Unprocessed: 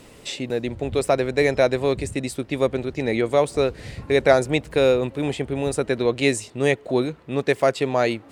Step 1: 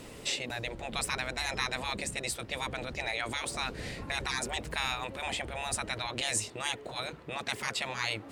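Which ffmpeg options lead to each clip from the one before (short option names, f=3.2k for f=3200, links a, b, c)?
-af "afftfilt=real='re*lt(hypot(re,im),0.141)':imag='im*lt(hypot(re,im),0.141)':win_size=1024:overlap=0.75"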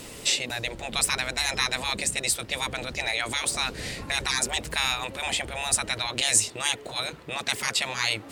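-af "highshelf=f=2.9k:g=9,volume=3dB"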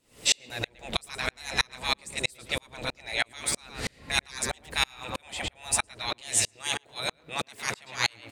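-filter_complex "[0:a]asplit=2[a][b];[b]adelay=112,lowpass=f=2.5k:p=1,volume=-5dB,asplit=2[c][d];[d]adelay=112,lowpass=f=2.5k:p=1,volume=0.36,asplit=2[e][f];[f]adelay=112,lowpass=f=2.5k:p=1,volume=0.36,asplit=2[g][h];[h]adelay=112,lowpass=f=2.5k:p=1,volume=0.36[i];[a][c][e][g][i]amix=inputs=5:normalize=0,aeval=exprs='val(0)*pow(10,-38*if(lt(mod(-3.1*n/s,1),2*abs(-3.1)/1000),1-mod(-3.1*n/s,1)/(2*abs(-3.1)/1000),(mod(-3.1*n/s,1)-2*abs(-3.1)/1000)/(1-2*abs(-3.1)/1000))/20)':c=same,volume=5dB"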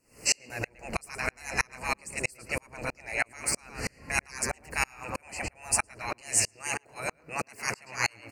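-af "asuperstop=centerf=3500:order=8:qfactor=2.3"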